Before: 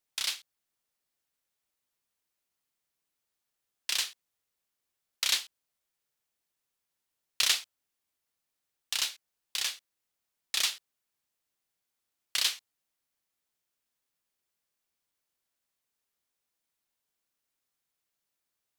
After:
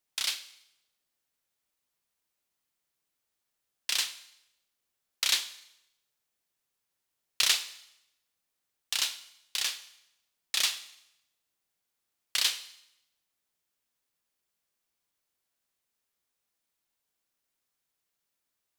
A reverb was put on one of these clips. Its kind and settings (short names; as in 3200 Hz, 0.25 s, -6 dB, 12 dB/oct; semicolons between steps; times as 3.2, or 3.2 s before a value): Schroeder reverb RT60 0.81 s, combs from 32 ms, DRR 12.5 dB; gain +1 dB